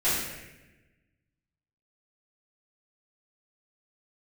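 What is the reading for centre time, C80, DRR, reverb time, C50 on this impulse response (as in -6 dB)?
78 ms, 2.5 dB, -13.5 dB, 1.1 s, 0.0 dB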